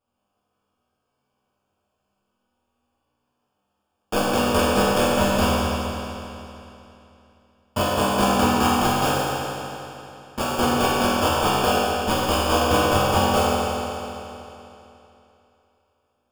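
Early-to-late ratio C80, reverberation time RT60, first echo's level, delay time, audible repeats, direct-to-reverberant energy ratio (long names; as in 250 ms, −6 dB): −2.5 dB, 3.0 s, no echo audible, no echo audible, no echo audible, −9.5 dB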